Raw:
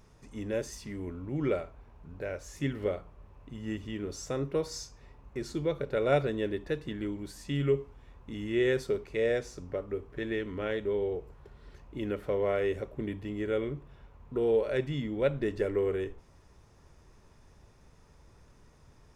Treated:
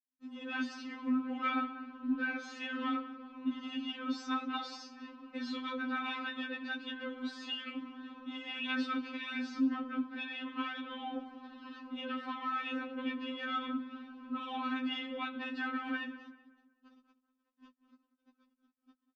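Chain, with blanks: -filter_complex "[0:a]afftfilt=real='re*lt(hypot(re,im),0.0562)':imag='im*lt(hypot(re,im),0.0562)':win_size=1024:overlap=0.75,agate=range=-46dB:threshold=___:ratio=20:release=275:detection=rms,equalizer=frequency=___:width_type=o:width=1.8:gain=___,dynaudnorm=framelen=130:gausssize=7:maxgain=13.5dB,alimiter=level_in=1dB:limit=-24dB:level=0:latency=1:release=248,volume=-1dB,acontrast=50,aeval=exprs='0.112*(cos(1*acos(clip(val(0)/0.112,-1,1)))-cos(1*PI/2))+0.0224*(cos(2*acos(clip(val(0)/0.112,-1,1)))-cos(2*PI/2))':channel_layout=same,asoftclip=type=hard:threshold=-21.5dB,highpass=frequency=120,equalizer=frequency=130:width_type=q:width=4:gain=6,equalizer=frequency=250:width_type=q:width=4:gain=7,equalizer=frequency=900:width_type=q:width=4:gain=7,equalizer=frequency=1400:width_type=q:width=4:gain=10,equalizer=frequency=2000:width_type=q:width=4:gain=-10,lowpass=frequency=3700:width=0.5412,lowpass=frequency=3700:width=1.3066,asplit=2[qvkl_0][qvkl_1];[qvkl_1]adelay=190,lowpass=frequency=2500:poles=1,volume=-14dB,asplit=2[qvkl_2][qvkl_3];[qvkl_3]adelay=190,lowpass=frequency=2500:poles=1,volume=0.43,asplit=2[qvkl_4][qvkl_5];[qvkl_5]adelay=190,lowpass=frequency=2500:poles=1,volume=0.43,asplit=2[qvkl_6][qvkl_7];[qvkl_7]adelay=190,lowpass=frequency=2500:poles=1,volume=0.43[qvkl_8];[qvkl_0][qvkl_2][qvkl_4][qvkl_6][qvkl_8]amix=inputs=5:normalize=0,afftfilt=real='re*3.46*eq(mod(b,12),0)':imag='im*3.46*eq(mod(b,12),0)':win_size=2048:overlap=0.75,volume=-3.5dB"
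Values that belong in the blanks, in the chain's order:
-52dB, 690, -13.5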